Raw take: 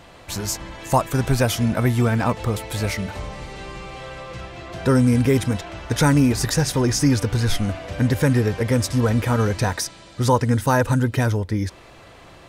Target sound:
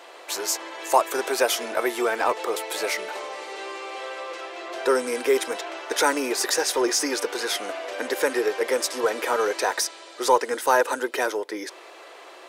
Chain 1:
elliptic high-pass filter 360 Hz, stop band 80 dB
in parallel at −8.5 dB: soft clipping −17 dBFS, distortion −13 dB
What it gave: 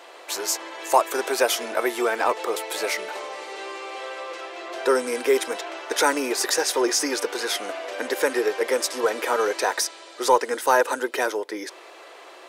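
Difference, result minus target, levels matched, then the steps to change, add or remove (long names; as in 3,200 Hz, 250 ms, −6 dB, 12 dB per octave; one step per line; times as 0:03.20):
soft clipping: distortion −6 dB
change: soft clipping −24.5 dBFS, distortion −7 dB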